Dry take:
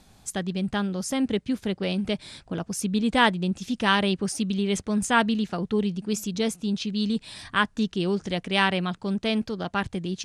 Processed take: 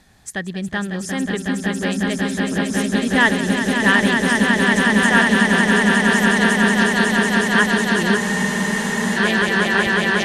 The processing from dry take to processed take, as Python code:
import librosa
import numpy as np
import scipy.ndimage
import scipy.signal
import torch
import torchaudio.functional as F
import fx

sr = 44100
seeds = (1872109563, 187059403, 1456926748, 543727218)

p1 = fx.diode_clip(x, sr, knee_db=-6.5)
p2 = fx.peak_eq(p1, sr, hz=1800.0, db=14.0, octaves=0.26)
p3 = p2 + fx.echo_swell(p2, sr, ms=183, loudest=8, wet_db=-5, dry=0)
p4 = fx.spec_freeze(p3, sr, seeds[0], at_s=8.2, hold_s=0.95)
y = p4 * librosa.db_to_amplitude(1.0)